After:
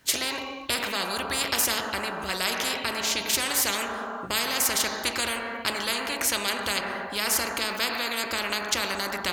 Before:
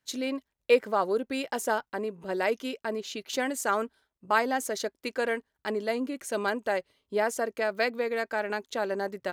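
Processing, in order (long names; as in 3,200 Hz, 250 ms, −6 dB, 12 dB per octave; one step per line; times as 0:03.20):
on a send at −13 dB: parametric band 830 Hz +13.5 dB 1.3 octaves + convolution reverb RT60 1.0 s, pre-delay 3 ms
on the sum: every bin compressed towards the loudest bin 10 to 1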